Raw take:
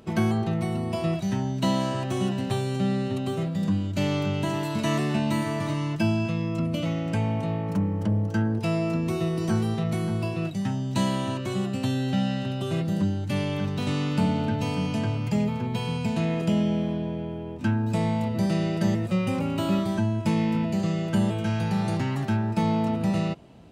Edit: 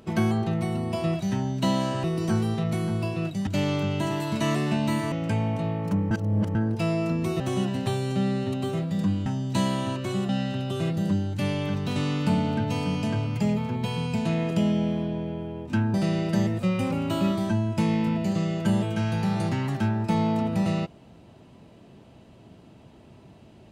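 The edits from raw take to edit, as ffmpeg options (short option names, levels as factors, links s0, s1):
-filter_complex "[0:a]asplit=10[s0][s1][s2][s3][s4][s5][s6][s7][s8][s9];[s0]atrim=end=2.042[s10];[s1]atrim=start=9.238:end=10.672[s11];[s2]atrim=start=3.898:end=5.552[s12];[s3]atrim=start=6.958:end=7.952[s13];[s4]atrim=start=7.948:end=8.392,asetpts=PTS-STARTPTS,areverse[s14];[s5]atrim=start=8.388:end=9.242[s15];[s6]atrim=start=2.038:end=3.902[s16];[s7]atrim=start=10.668:end=11.702[s17];[s8]atrim=start=12.198:end=17.852[s18];[s9]atrim=start=18.418[s19];[s10][s11]acrossfade=d=0.004:c1=hsin:c2=hsin[s20];[s20][s12]acrossfade=d=0.004:c1=hsin:c2=hsin[s21];[s21][s13]acrossfade=d=0.004:c1=hsin:c2=hsin[s22];[s22][s14]acrossfade=d=0.004:c1=hsin:c2=hsin[s23];[s23][s15]acrossfade=d=0.004:c1=hsin:c2=hsin[s24];[s24][s16]acrossfade=d=0.004:c1=hsin:c2=hsin[s25];[s25][s17]acrossfade=d=0.004:c1=hsin:c2=hsin[s26];[s26][s18]acrossfade=d=0.004:c1=hsin:c2=hsin[s27];[s27][s19]acrossfade=d=0.004:c1=hsin:c2=hsin"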